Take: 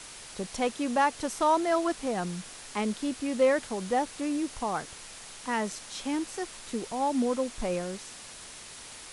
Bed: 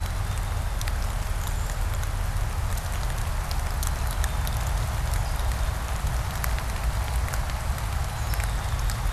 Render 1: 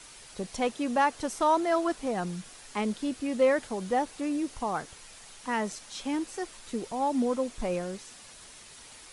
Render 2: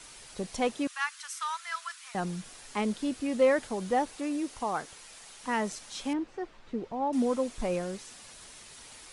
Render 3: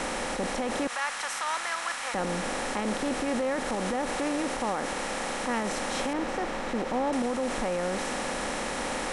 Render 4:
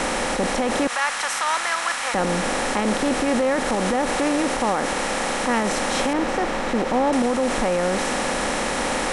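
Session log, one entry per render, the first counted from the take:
noise reduction 6 dB, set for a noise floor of -46 dBFS
0.87–2.15 s: steep high-pass 1.2 kHz; 4.15–5.41 s: bass shelf 160 Hz -8.5 dB; 6.13–7.13 s: tape spacing loss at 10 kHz 31 dB
spectral levelling over time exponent 0.4; peak limiter -20.5 dBFS, peak gain reduction 10.5 dB
trim +8 dB

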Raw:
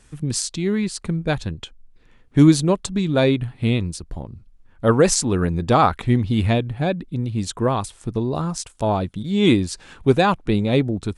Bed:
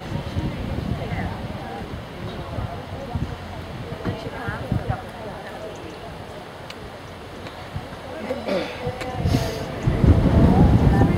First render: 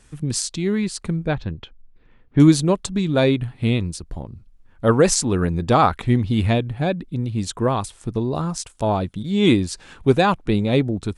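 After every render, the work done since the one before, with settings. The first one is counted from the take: 1.27–2.40 s: distance through air 240 m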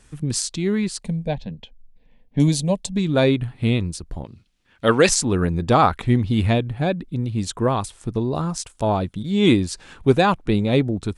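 0.99–2.97 s: static phaser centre 350 Hz, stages 6; 4.24–5.09 s: frequency weighting D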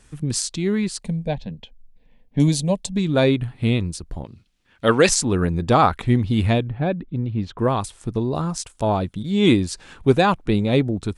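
6.67–7.59 s: distance through air 300 m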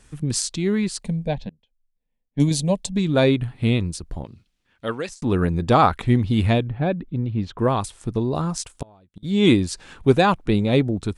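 1.49–2.51 s: upward expansion 2.5:1, over -29 dBFS; 4.22–5.22 s: fade out; 8.68–9.23 s: inverted gate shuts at -19 dBFS, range -31 dB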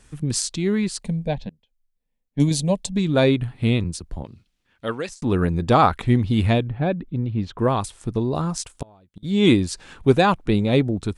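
3.84–4.24 s: three bands expanded up and down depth 40%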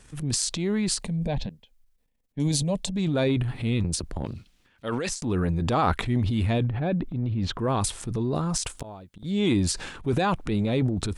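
compression 2:1, threshold -25 dBFS, peak gain reduction 9 dB; transient shaper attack -5 dB, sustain +10 dB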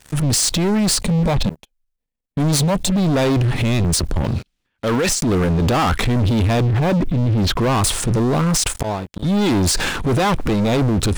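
waveshaping leveller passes 5; peak limiter -14 dBFS, peak gain reduction 4 dB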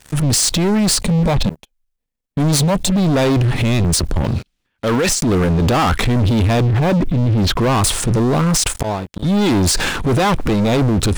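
trim +2 dB

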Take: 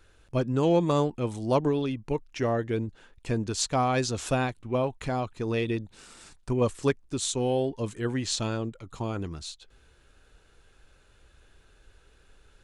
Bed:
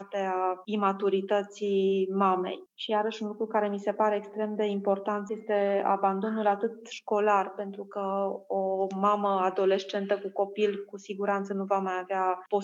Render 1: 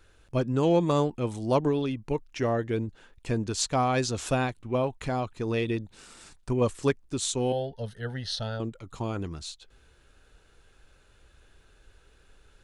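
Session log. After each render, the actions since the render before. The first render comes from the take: 7.52–8.60 s: static phaser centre 1.6 kHz, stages 8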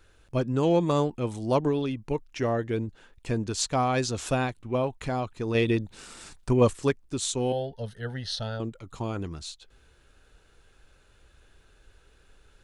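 5.55–6.73 s: gain +4.5 dB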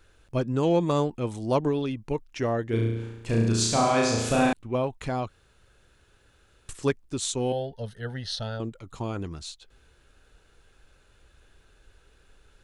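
2.69–4.53 s: flutter echo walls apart 6 m, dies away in 1 s; 5.29–6.69 s: room tone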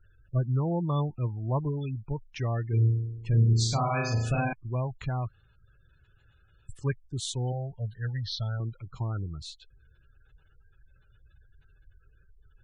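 spectral gate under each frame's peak -20 dB strong; ten-band graphic EQ 125 Hz +7 dB, 250 Hz -10 dB, 500 Hz -9 dB, 1 kHz -3 dB, 8 kHz -8 dB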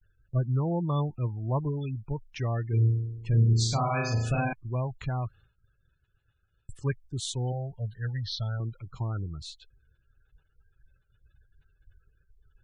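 expander -52 dBFS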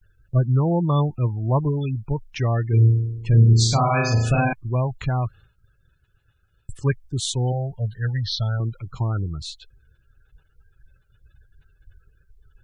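trim +8 dB

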